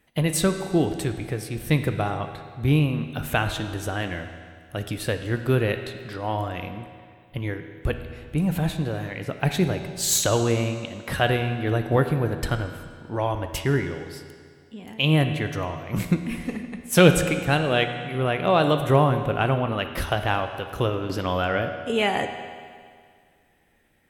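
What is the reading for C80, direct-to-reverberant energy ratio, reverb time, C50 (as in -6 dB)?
9.5 dB, 7.0 dB, 2.0 s, 8.0 dB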